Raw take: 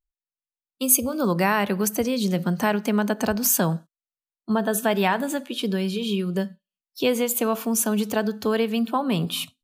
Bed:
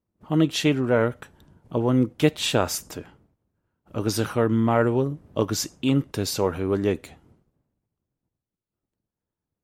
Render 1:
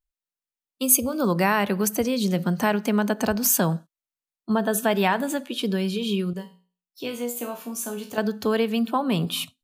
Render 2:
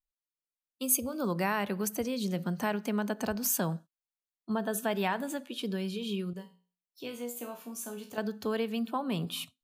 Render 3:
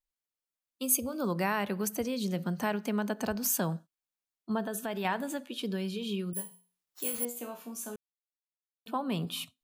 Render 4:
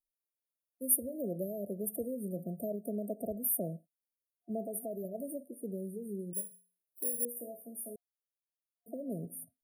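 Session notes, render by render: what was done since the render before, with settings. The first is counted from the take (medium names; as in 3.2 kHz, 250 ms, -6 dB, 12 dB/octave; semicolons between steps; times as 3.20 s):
6.33–8.18 s: feedback comb 60 Hz, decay 0.38 s, mix 90%
trim -9 dB
4.64–5.05 s: compression 2:1, threshold -33 dBFS; 6.33–7.25 s: careless resampling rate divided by 4×, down none, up zero stuff; 7.96–8.86 s: mute
FFT band-reject 700–8700 Hz; bass shelf 320 Hz -9.5 dB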